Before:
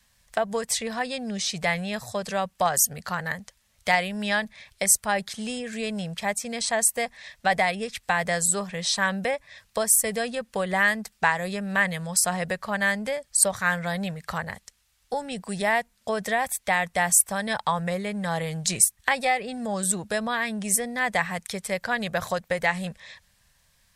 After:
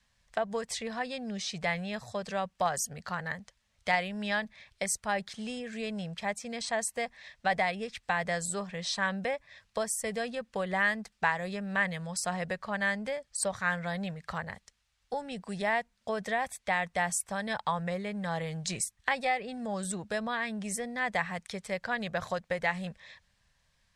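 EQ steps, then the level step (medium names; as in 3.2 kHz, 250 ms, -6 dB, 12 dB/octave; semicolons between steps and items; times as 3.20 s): distance through air 67 m; -5.5 dB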